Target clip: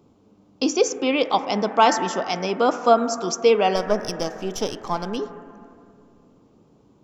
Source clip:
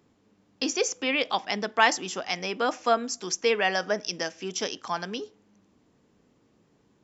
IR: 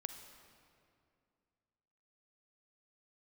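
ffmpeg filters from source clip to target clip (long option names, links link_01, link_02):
-filter_complex "[0:a]asplit=3[link_01][link_02][link_03];[link_01]afade=type=out:start_time=3.75:duration=0.02[link_04];[link_02]aeval=exprs='if(lt(val(0),0),0.447*val(0),val(0))':channel_layout=same,afade=type=in:start_time=3.75:duration=0.02,afade=type=out:start_time=5.16:duration=0.02[link_05];[link_03]afade=type=in:start_time=5.16:duration=0.02[link_06];[link_04][link_05][link_06]amix=inputs=3:normalize=0,asplit=2[link_07][link_08];[link_08]lowpass=frequency=1600:width=0.5412,lowpass=frequency=1600:width=1.3066[link_09];[1:a]atrim=start_sample=2205,highshelf=frequency=3100:gain=8.5[link_10];[link_09][link_10]afir=irnorm=-1:irlink=0,volume=5dB[link_11];[link_07][link_11]amix=inputs=2:normalize=0,volume=1.5dB"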